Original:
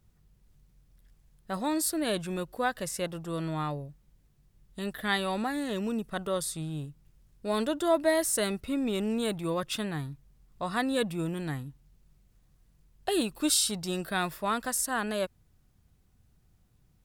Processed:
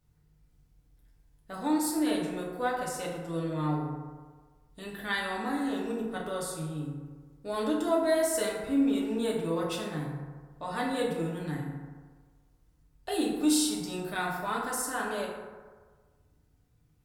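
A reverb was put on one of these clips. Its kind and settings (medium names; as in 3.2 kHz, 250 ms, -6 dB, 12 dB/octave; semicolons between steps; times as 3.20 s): FDN reverb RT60 1.5 s, low-frequency decay 0.85×, high-frequency decay 0.4×, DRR -4 dB; trim -7 dB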